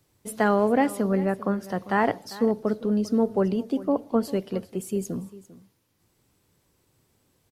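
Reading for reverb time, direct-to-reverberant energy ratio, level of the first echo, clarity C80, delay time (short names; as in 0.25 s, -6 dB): none, none, -18.0 dB, none, 0.397 s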